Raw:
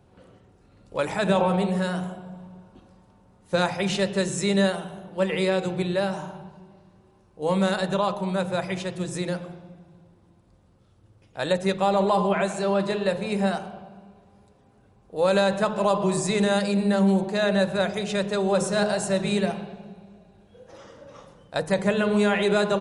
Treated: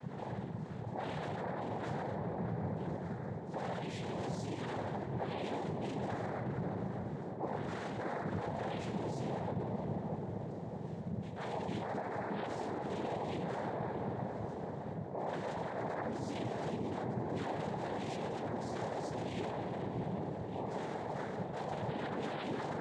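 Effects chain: reverse; compressor 6:1, threshold -34 dBFS, peak gain reduction 16.5 dB; reverse; shoebox room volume 37 m³, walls mixed, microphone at 3 m; limiter -30.5 dBFS, peak gain reduction 21 dB; noise vocoder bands 6; high shelf 5000 Hz -10.5 dB; on a send: narrowing echo 0.617 s, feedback 63%, band-pass 460 Hz, level -4 dB; on the sum: gain -1.5 dB

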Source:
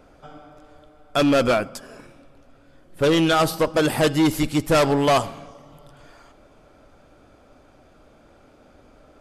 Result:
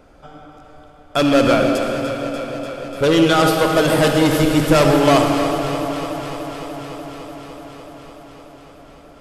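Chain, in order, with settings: echo with dull and thin repeats by turns 0.147 s, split 890 Hz, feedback 89%, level -10 dB; on a send at -3 dB: reverb RT60 3.0 s, pre-delay 46 ms; on the sum: gain +2.5 dB

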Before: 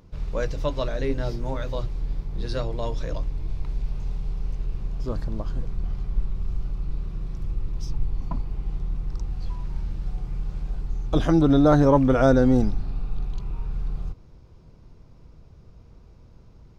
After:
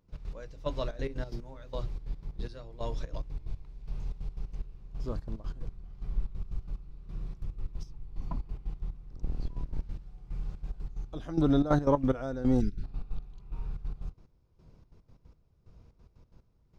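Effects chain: 9.1–9.84 octaver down 1 oct, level +3 dB; 12.6–12.84 spectral gain 440–1300 Hz -27 dB; step gate ".x.x....xxx.x" 182 bpm -12 dB; gain -6.5 dB

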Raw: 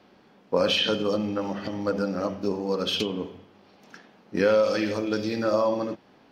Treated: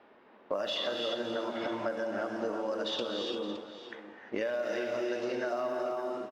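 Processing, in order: tone controls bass -11 dB, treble -10 dB; in parallel at -11 dB: bit-crush 7-bit; on the sum: low shelf 110 Hz -2.5 dB; pitch shift +2 st; low-pass opened by the level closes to 2600 Hz, open at -18 dBFS; non-linear reverb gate 0.37 s rising, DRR 3 dB; compressor 6:1, threshold -31 dBFS, peak gain reduction 15 dB; on a send: echo 0.566 s -13 dB

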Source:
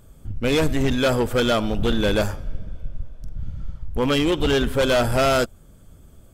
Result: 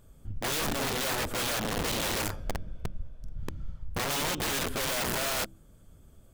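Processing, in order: wrapped overs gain 18.5 dB; de-hum 64.69 Hz, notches 5; gain -7 dB

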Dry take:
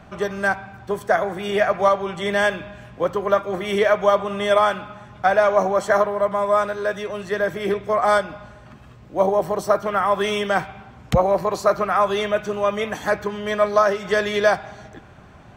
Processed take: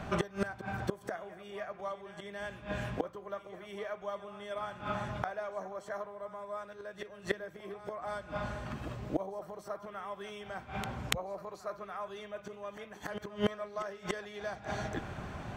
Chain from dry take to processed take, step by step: flipped gate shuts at -21 dBFS, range -26 dB; pre-echo 0.287 s -13 dB; gain +3.5 dB

